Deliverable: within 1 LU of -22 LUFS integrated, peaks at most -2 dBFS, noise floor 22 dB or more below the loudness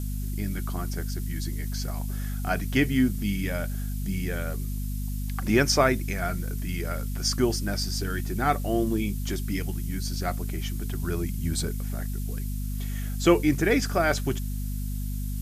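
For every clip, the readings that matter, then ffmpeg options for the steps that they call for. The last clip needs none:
hum 50 Hz; harmonics up to 250 Hz; hum level -28 dBFS; noise floor -30 dBFS; noise floor target -50 dBFS; loudness -28.0 LUFS; peak -7.0 dBFS; loudness target -22.0 LUFS
-> -af "bandreject=f=50:t=h:w=6,bandreject=f=100:t=h:w=6,bandreject=f=150:t=h:w=6,bandreject=f=200:t=h:w=6,bandreject=f=250:t=h:w=6"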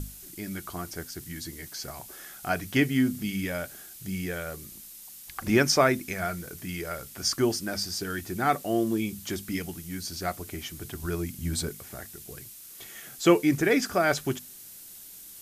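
hum none; noise floor -46 dBFS; noise floor target -51 dBFS
-> -af "afftdn=nr=6:nf=-46"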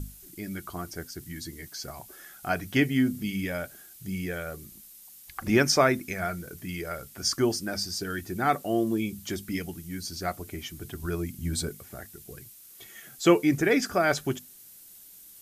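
noise floor -51 dBFS; loudness -28.5 LUFS; peak -7.5 dBFS; loudness target -22.0 LUFS
-> -af "volume=6.5dB,alimiter=limit=-2dB:level=0:latency=1"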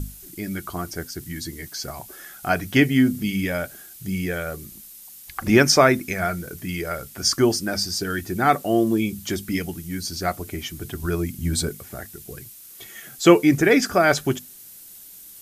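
loudness -22.0 LUFS; peak -2.0 dBFS; noise floor -44 dBFS

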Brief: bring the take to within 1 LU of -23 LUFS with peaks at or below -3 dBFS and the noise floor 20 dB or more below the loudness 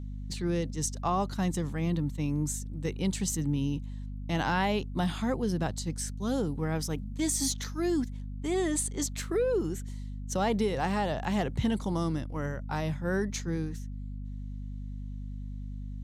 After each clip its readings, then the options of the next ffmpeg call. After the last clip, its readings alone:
hum 50 Hz; harmonics up to 250 Hz; hum level -35 dBFS; loudness -31.5 LUFS; peak -16.0 dBFS; loudness target -23.0 LUFS
-> -af "bandreject=f=50:t=h:w=6,bandreject=f=100:t=h:w=6,bandreject=f=150:t=h:w=6,bandreject=f=200:t=h:w=6,bandreject=f=250:t=h:w=6"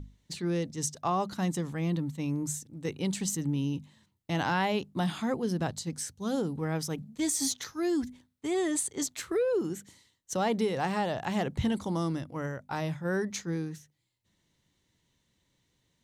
hum none; loudness -31.5 LUFS; peak -15.5 dBFS; loudness target -23.0 LUFS
-> -af "volume=8.5dB"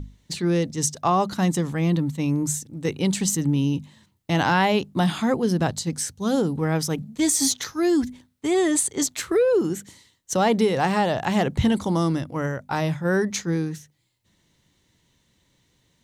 loudness -23.0 LUFS; peak -7.0 dBFS; noise floor -67 dBFS

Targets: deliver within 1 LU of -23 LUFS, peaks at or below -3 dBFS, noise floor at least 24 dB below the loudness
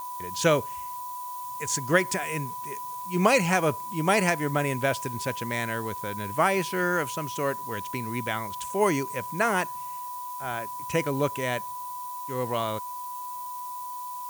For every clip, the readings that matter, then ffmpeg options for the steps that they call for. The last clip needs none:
steady tone 990 Hz; tone level -34 dBFS; noise floor -36 dBFS; noise floor target -52 dBFS; loudness -28.0 LUFS; peak -7.0 dBFS; loudness target -23.0 LUFS
-> -af "bandreject=f=990:w=30"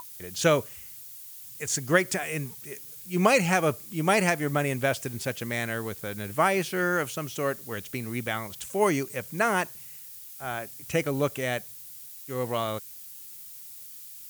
steady tone none; noise floor -44 dBFS; noise floor target -52 dBFS
-> -af "afftdn=nr=8:nf=-44"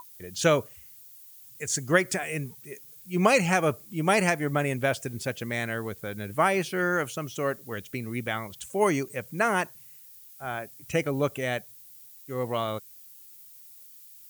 noise floor -50 dBFS; noise floor target -52 dBFS
-> -af "afftdn=nr=6:nf=-50"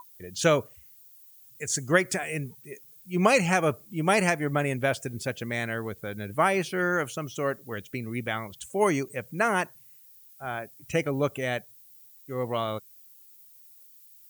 noise floor -54 dBFS; loudness -28.0 LUFS; peak -7.0 dBFS; loudness target -23.0 LUFS
-> -af "volume=5dB,alimiter=limit=-3dB:level=0:latency=1"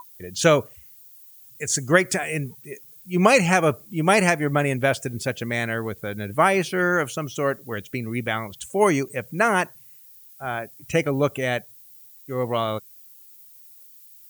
loudness -23.0 LUFS; peak -3.0 dBFS; noise floor -49 dBFS

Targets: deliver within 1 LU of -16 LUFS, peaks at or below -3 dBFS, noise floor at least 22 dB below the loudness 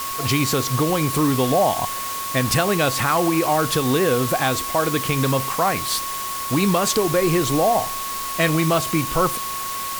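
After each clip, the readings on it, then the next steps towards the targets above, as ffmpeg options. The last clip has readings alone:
steady tone 1100 Hz; tone level -28 dBFS; noise floor -28 dBFS; noise floor target -42 dBFS; loudness -20.0 LUFS; peak -5.0 dBFS; loudness target -16.0 LUFS
-> -af "bandreject=f=1.1k:w=30"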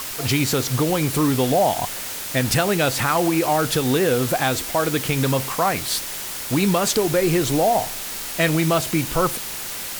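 steady tone none; noise floor -30 dBFS; noise floor target -43 dBFS
-> -af "afftdn=nr=13:nf=-30"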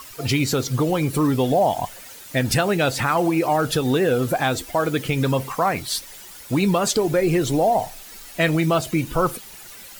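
noise floor -41 dBFS; noise floor target -43 dBFS
-> -af "afftdn=nr=6:nf=-41"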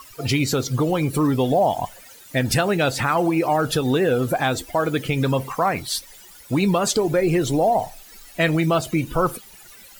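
noise floor -46 dBFS; loudness -21.5 LUFS; peak -7.5 dBFS; loudness target -16.0 LUFS
-> -af "volume=5.5dB,alimiter=limit=-3dB:level=0:latency=1"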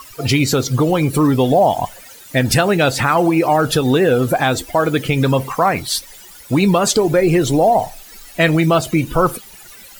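loudness -16.0 LUFS; peak -3.0 dBFS; noise floor -40 dBFS

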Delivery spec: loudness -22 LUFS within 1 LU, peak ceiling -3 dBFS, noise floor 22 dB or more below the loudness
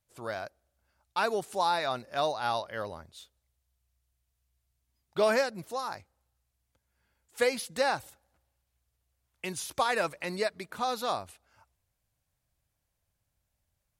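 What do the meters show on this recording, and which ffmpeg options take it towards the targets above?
loudness -31.5 LUFS; peak -13.5 dBFS; loudness target -22.0 LUFS
-> -af "volume=9.5dB"

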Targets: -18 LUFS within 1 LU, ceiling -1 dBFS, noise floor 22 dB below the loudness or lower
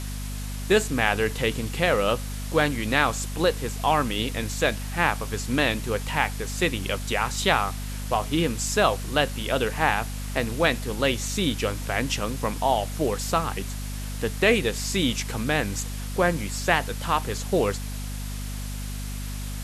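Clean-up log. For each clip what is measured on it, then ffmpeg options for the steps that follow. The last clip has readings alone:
hum 50 Hz; harmonics up to 250 Hz; hum level -30 dBFS; noise floor -32 dBFS; noise floor target -48 dBFS; loudness -25.5 LUFS; peak -5.0 dBFS; loudness target -18.0 LUFS
-> -af "bandreject=f=50:t=h:w=4,bandreject=f=100:t=h:w=4,bandreject=f=150:t=h:w=4,bandreject=f=200:t=h:w=4,bandreject=f=250:t=h:w=4"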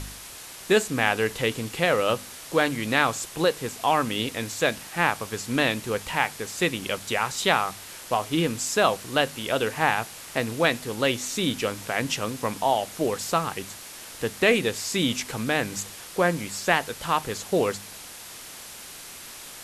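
hum none; noise floor -42 dBFS; noise floor target -48 dBFS
-> -af "afftdn=nr=6:nf=-42"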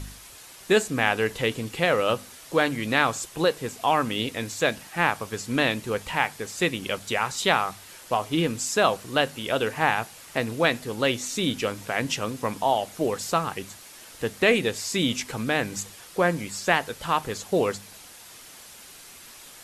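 noise floor -47 dBFS; noise floor target -48 dBFS
-> -af "afftdn=nr=6:nf=-47"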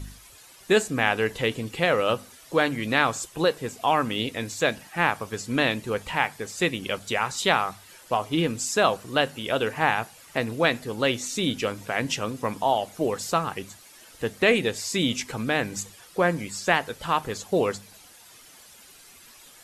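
noise floor -51 dBFS; loudness -25.5 LUFS; peak -5.0 dBFS; loudness target -18.0 LUFS
-> -af "volume=7.5dB,alimiter=limit=-1dB:level=0:latency=1"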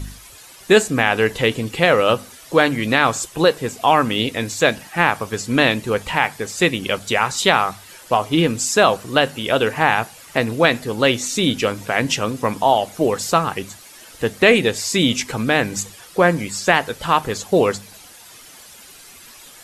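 loudness -18.5 LUFS; peak -1.0 dBFS; noise floor -43 dBFS

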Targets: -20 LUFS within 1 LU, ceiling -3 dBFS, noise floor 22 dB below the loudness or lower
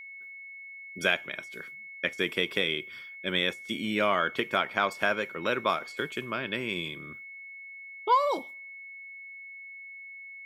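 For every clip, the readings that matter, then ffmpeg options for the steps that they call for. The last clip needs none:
steady tone 2200 Hz; tone level -42 dBFS; loudness -29.0 LUFS; peak -9.5 dBFS; loudness target -20.0 LUFS
-> -af "bandreject=f=2.2k:w=30"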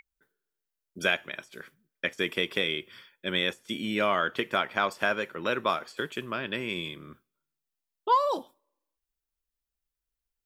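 steady tone none; loudness -29.0 LUFS; peak -9.5 dBFS; loudness target -20.0 LUFS
-> -af "volume=9dB,alimiter=limit=-3dB:level=0:latency=1"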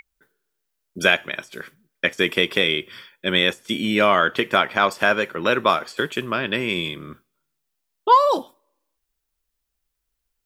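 loudness -20.5 LUFS; peak -3.0 dBFS; noise floor -78 dBFS

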